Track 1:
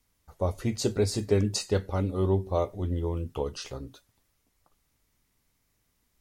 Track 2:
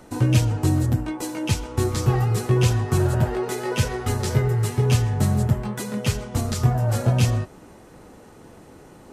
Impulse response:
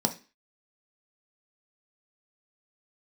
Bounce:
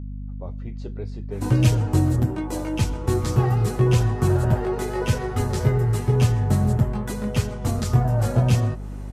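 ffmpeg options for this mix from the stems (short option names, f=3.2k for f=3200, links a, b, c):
-filter_complex "[0:a]lowpass=2.8k,volume=-10.5dB[a];[1:a]adynamicequalizer=threshold=0.00708:dfrequency=1700:dqfactor=0.7:tfrequency=1700:tqfactor=0.7:attack=5:release=100:ratio=0.375:range=2.5:mode=cutabove:tftype=highshelf,adelay=1300,volume=0.5dB[b];[a][b]amix=inputs=2:normalize=0,aeval=exprs='val(0)+0.0282*(sin(2*PI*50*n/s)+sin(2*PI*2*50*n/s)/2+sin(2*PI*3*50*n/s)/3+sin(2*PI*4*50*n/s)/4+sin(2*PI*5*50*n/s)/5)':c=same"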